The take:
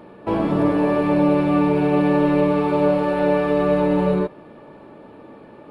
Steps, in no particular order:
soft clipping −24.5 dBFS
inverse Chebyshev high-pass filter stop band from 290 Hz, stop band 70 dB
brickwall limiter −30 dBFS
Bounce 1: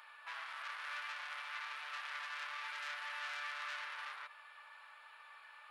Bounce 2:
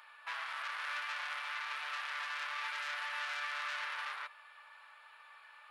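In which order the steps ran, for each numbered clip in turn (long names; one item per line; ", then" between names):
soft clipping, then brickwall limiter, then inverse Chebyshev high-pass filter
soft clipping, then inverse Chebyshev high-pass filter, then brickwall limiter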